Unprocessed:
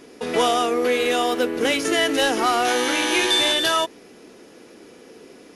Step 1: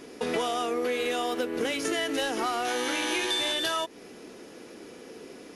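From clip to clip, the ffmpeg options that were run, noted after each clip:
-af "acompressor=threshold=-26dB:ratio=6"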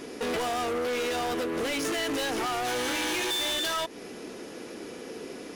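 -af "volume=32.5dB,asoftclip=hard,volume=-32.5dB,volume=5dB"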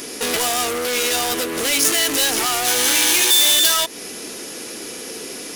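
-af "crystalizer=i=5.5:c=0,volume=4dB"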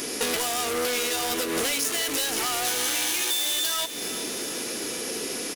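-af "acompressor=threshold=-23dB:ratio=6,aecho=1:1:380|760|1140|1520|1900|2280:0.237|0.13|0.0717|0.0395|0.0217|0.0119"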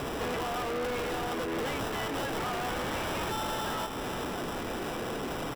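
-filter_complex "[0:a]acrossover=split=2500[a][b];[b]acrusher=samples=20:mix=1:aa=0.000001[c];[a][c]amix=inputs=2:normalize=0,asoftclip=type=tanh:threshold=-29.5dB"

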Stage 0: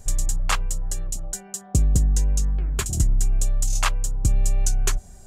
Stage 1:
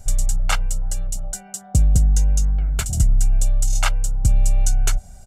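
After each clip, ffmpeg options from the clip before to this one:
-af "aecho=1:1:1.4:0.6"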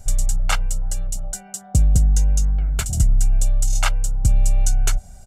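-af anull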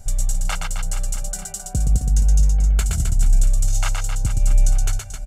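-af "alimiter=limit=-11.5dB:level=0:latency=1:release=459,aecho=1:1:120|264|436.8|644.2|893:0.631|0.398|0.251|0.158|0.1"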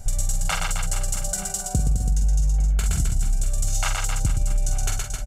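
-filter_complex "[0:a]asplit=2[a][b];[b]adelay=46,volume=-7dB[c];[a][c]amix=inputs=2:normalize=0,acompressor=threshold=-20dB:ratio=6,volume=2.5dB"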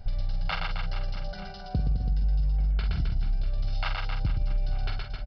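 -af "aresample=11025,aresample=44100,volume=-5dB"

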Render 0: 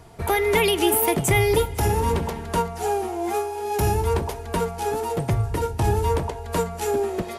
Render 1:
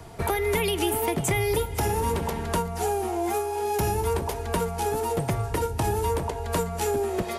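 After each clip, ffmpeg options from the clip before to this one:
-filter_complex "[0:a]acrossover=split=180|390|7700[a][b][c][d];[a]acompressor=threshold=-33dB:ratio=4[e];[b]acompressor=threshold=-38dB:ratio=4[f];[c]acompressor=threshold=-31dB:ratio=4[g];[d]acompressor=threshold=-39dB:ratio=4[h];[e][f][g][h]amix=inputs=4:normalize=0,volume=3.5dB"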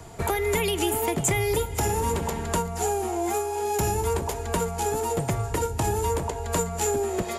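-af "equalizer=f=7.1k:w=7.6:g=13"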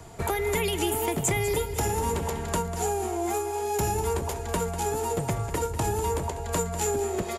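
-af "aecho=1:1:195:0.237,volume=-2dB"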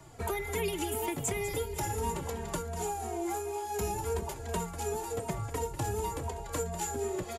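-filter_complex "[0:a]asplit=2[a][b];[b]adelay=2.9,afreqshift=-2.8[c];[a][c]amix=inputs=2:normalize=1,volume=-3.5dB"

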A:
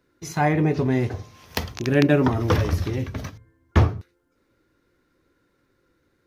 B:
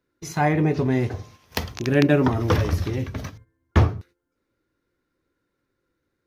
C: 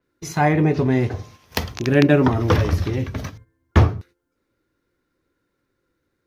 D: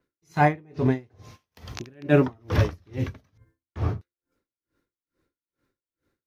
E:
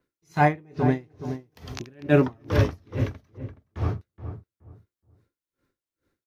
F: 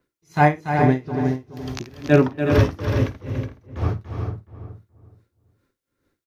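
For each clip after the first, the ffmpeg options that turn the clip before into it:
-af "agate=range=-9dB:threshold=-46dB:ratio=16:detection=peak"
-af "adynamicequalizer=threshold=0.00501:dfrequency=5700:dqfactor=0.7:tfrequency=5700:tqfactor=0.7:attack=5:release=100:ratio=0.375:range=2.5:mode=cutabove:tftype=highshelf,volume=3dB"
-af "aeval=exprs='val(0)*pow(10,-36*(0.5-0.5*cos(2*PI*2.3*n/s))/20)':c=same"
-filter_complex "[0:a]asplit=2[a][b];[b]adelay=422,lowpass=f=1.1k:p=1,volume=-9.5dB,asplit=2[c][d];[d]adelay=422,lowpass=f=1.1k:p=1,volume=0.24,asplit=2[e][f];[f]adelay=422,lowpass=f=1.1k:p=1,volume=0.24[g];[a][c][e][g]amix=inputs=4:normalize=0"
-af "aecho=1:1:54|287|368:0.133|0.355|0.447,volume=3.5dB"

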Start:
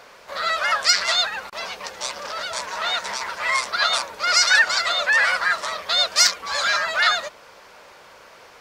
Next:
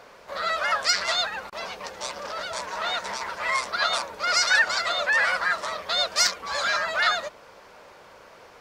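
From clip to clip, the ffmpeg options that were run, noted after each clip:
-af "tiltshelf=f=1.1k:g=3.5,volume=-2.5dB"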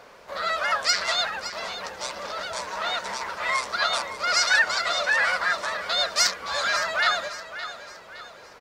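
-af "aecho=1:1:565|1130|1695|2260:0.237|0.0972|0.0399|0.0163"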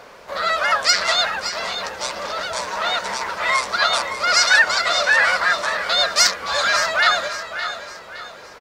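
-af "aecho=1:1:589:0.211,volume=6dB"

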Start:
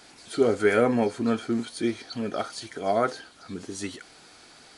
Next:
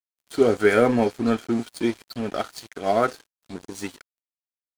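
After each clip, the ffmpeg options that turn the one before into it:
-af "aeval=exprs='sgn(val(0))*max(abs(val(0))-0.0106,0)':c=same,volume=4dB"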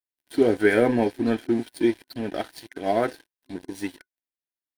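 -af "superequalizer=6b=2:10b=0.398:11b=1.41:14b=0.708:15b=0.398,volume=-2dB"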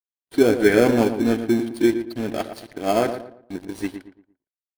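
-filter_complex "[0:a]agate=range=-33dB:threshold=-42dB:ratio=3:detection=peak,asplit=2[a][b];[b]acrusher=samples=23:mix=1:aa=0.000001,volume=-5.5dB[c];[a][c]amix=inputs=2:normalize=0,asplit=2[d][e];[e]adelay=115,lowpass=f=1.8k:p=1,volume=-9dB,asplit=2[f][g];[g]adelay=115,lowpass=f=1.8k:p=1,volume=0.34,asplit=2[h][i];[i]adelay=115,lowpass=f=1.8k:p=1,volume=0.34,asplit=2[j][k];[k]adelay=115,lowpass=f=1.8k:p=1,volume=0.34[l];[d][f][h][j][l]amix=inputs=5:normalize=0"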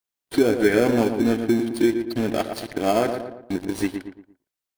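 -af "acompressor=threshold=-32dB:ratio=2,volume=8.5dB"

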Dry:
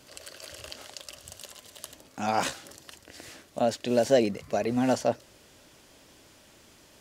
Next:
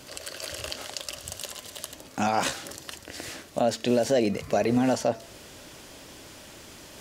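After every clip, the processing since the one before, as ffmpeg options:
-af "alimiter=limit=-21.5dB:level=0:latency=1:release=214,areverse,acompressor=mode=upward:threshold=-49dB:ratio=2.5,areverse,bandreject=f=224.6:t=h:w=4,bandreject=f=449.2:t=h:w=4,bandreject=f=673.8:t=h:w=4,bandreject=f=898.4:t=h:w=4,bandreject=f=1.123k:t=h:w=4,bandreject=f=1.3476k:t=h:w=4,bandreject=f=1.5722k:t=h:w=4,bandreject=f=1.7968k:t=h:w=4,bandreject=f=2.0214k:t=h:w=4,bandreject=f=2.246k:t=h:w=4,bandreject=f=2.4706k:t=h:w=4,bandreject=f=2.6952k:t=h:w=4,bandreject=f=2.9198k:t=h:w=4,bandreject=f=3.1444k:t=h:w=4,bandreject=f=3.369k:t=h:w=4,bandreject=f=3.5936k:t=h:w=4,bandreject=f=3.8182k:t=h:w=4,bandreject=f=4.0428k:t=h:w=4,bandreject=f=4.2674k:t=h:w=4,bandreject=f=4.492k:t=h:w=4,bandreject=f=4.7166k:t=h:w=4,bandreject=f=4.9412k:t=h:w=4,bandreject=f=5.1658k:t=h:w=4,bandreject=f=5.3904k:t=h:w=4,bandreject=f=5.615k:t=h:w=4,bandreject=f=5.8396k:t=h:w=4,bandreject=f=6.0642k:t=h:w=4,bandreject=f=6.2888k:t=h:w=4,bandreject=f=6.5134k:t=h:w=4,bandreject=f=6.738k:t=h:w=4,bandreject=f=6.9626k:t=h:w=4,bandreject=f=7.1872k:t=h:w=4,bandreject=f=7.4118k:t=h:w=4,bandreject=f=7.6364k:t=h:w=4,volume=8dB"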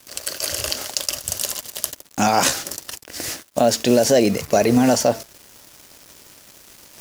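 -af "aexciter=amount=2.7:drive=2.6:freq=4.9k,agate=range=-6dB:threshold=-35dB:ratio=16:detection=peak,acrusher=bits=6:mix=0:aa=0.5,volume=7.5dB"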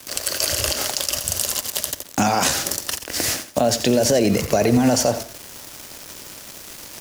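-filter_complex "[0:a]alimiter=limit=-10dB:level=0:latency=1:release=64,acrossover=split=120[a][b];[b]acompressor=threshold=-28dB:ratio=2[c];[a][c]amix=inputs=2:normalize=0,aecho=1:1:86|172|258:0.251|0.0578|0.0133,volume=8dB"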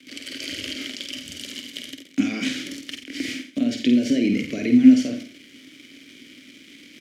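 -filter_complex "[0:a]asplit=3[a][b][c];[a]bandpass=f=270:t=q:w=8,volume=0dB[d];[b]bandpass=f=2.29k:t=q:w=8,volume=-6dB[e];[c]bandpass=f=3.01k:t=q:w=8,volume=-9dB[f];[d][e][f]amix=inputs=3:normalize=0,asplit=2[g][h];[h]adelay=50,volume=-6dB[i];[g][i]amix=inputs=2:normalize=0,volume=8dB"

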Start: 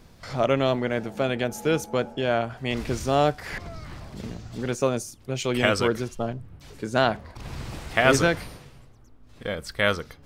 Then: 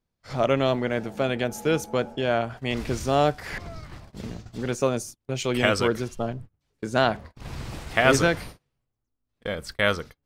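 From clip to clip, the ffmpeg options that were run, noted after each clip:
-af "agate=range=-30dB:threshold=-38dB:ratio=16:detection=peak"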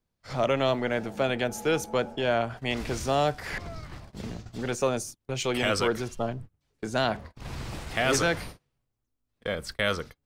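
-filter_complex "[0:a]equalizer=f=12k:w=7.8:g=-3,acrossover=split=410|3100[a][b][c];[a]asoftclip=type=tanh:threshold=-29dB[d];[b]alimiter=limit=-16.5dB:level=0:latency=1:release=29[e];[d][e][c]amix=inputs=3:normalize=0"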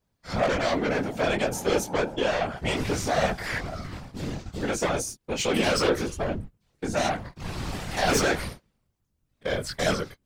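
-af "aeval=exprs='0.316*sin(PI/2*3.16*val(0)/0.316)':c=same,flanger=delay=19:depth=3.6:speed=1.3,afftfilt=real='hypot(re,im)*cos(2*PI*random(0))':imag='hypot(re,im)*sin(2*PI*random(1))':win_size=512:overlap=0.75"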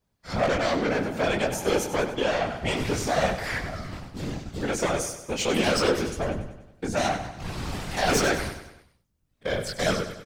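-af "aecho=1:1:97|194|291|388|485:0.282|0.144|0.0733|0.0374|0.0191"

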